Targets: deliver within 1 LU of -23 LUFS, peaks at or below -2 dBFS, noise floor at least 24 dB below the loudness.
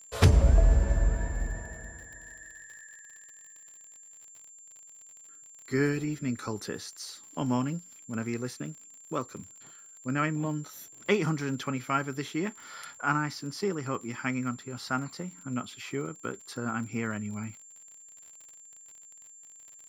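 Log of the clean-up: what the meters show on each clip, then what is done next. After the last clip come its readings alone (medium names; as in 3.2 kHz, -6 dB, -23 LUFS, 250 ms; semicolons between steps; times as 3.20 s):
tick rate 52 per s; steady tone 7.3 kHz; tone level -49 dBFS; loudness -31.0 LUFS; peak level -9.5 dBFS; loudness target -23.0 LUFS
-> de-click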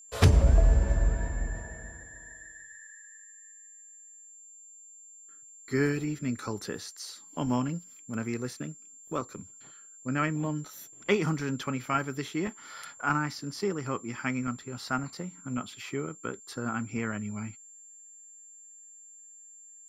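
tick rate 0 per s; steady tone 7.3 kHz; tone level -49 dBFS
-> band-stop 7.3 kHz, Q 30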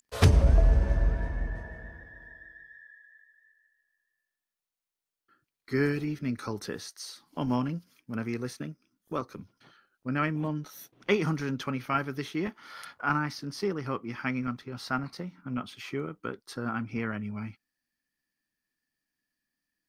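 steady tone not found; loudness -31.0 LUFS; peak level -9.0 dBFS; loudness target -23.0 LUFS
-> trim +8 dB; peak limiter -2 dBFS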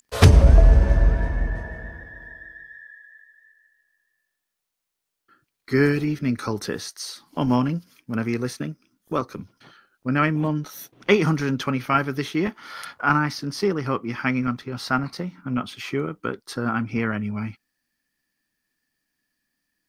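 loudness -23.0 LUFS; peak level -2.0 dBFS; noise floor -81 dBFS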